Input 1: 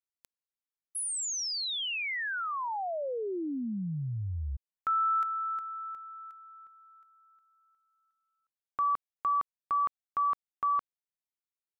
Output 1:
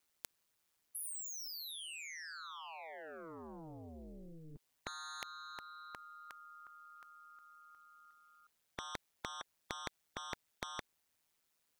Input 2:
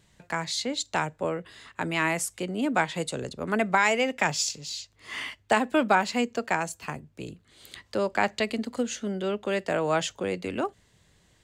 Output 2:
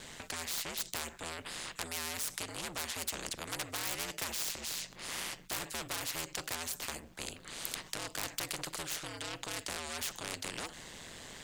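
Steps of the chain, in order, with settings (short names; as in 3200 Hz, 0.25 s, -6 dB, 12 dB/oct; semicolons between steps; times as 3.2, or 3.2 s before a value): ring modulator 80 Hz; soft clip -28 dBFS; spectral compressor 4:1; gain +15 dB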